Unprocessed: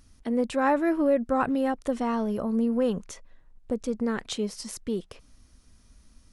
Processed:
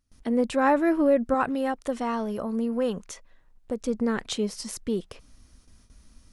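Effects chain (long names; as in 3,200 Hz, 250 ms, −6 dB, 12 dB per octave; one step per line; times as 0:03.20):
noise gate with hold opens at −47 dBFS
0:01.34–0:03.85: low-shelf EQ 450 Hz −6 dB
level +2 dB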